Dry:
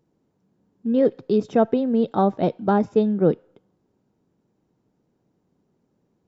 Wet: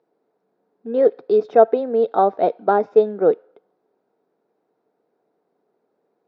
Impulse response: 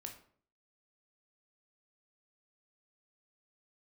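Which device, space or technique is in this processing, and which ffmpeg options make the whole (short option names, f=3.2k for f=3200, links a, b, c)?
phone earpiece: -af "highpass=410,equalizer=f=440:t=q:w=4:g=8,equalizer=f=700:t=q:w=4:g=8,equalizer=f=1.4k:t=q:w=4:g=4,equalizer=f=3k:t=q:w=4:g=-8,lowpass=f=4.3k:w=0.5412,lowpass=f=4.3k:w=1.3066,volume=1dB"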